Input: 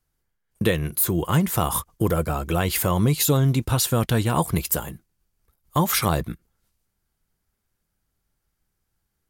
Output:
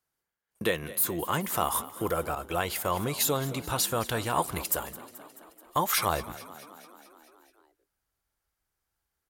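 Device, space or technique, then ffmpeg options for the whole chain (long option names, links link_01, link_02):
filter by subtraction: -filter_complex "[0:a]lowshelf=frequency=320:gain=5,asplit=8[link_01][link_02][link_03][link_04][link_05][link_06][link_07][link_08];[link_02]adelay=216,afreqshift=33,volume=-17dB[link_09];[link_03]adelay=432,afreqshift=66,volume=-20.7dB[link_10];[link_04]adelay=648,afreqshift=99,volume=-24.5dB[link_11];[link_05]adelay=864,afreqshift=132,volume=-28.2dB[link_12];[link_06]adelay=1080,afreqshift=165,volume=-32dB[link_13];[link_07]adelay=1296,afreqshift=198,volume=-35.7dB[link_14];[link_08]adelay=1512,afreqshift=231,volume=-39.5dB[link_15];[link_01][link_09][link_10][link_11][link_12][link_13][link_14][link_15]amix=inputs=8:normalize=0,asubboost=boost=7:cutoff=62,asettb=1/sr,asplit=3[link_16][link_17][link_18];[link_16]atrim=end=2.354[link_19];[link_17]atrim=start=2.35:end=3,asetpts=PTS-STARTPTS,afade=type=in:duration=0.004:curve=qsin,afade=type=out:start_time=0.646:duration=0.004:curve=qsin,agate=range=-33dB:threshold=-17dB:ratio=3:detection=peak[link_20];[link_18]atrim=start=2.996[link_21];[link_19][link_20]acrossfade=duration=0.004:curve1=hsin:curve2=qsin[link_22];[link_22][link_21]acrossfade=duration=0.004:curve1=qsin:curve2=hsin,asplit=2[link_23][link_24];[link_24]lowpass=870,volume=-1[link_25];[link_23][link_25]amix=inputs=2:normalize=0,volume=-4.5dB"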